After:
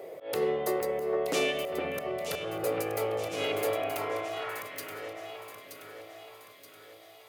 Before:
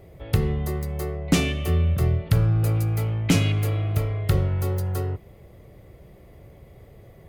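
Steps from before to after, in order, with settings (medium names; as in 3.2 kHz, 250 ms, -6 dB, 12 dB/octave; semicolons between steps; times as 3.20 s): high-pass 82 Hz 6 dB/octave; in parallel at -2.5 dB: compression, threshold -39 dBFS, peak gain reduction 22.5 dB; on the sum: peak limiter -17.5 dBFS, peak gain reduction 10 dB; high-pass sweep 490 Hz -> 3.6 kHz, 3.63–5.16 s; slow attack 149 ms; echo whose repeats swap between lows and highs 463 ms, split 2.3 kHz, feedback 70%, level -4.5 dB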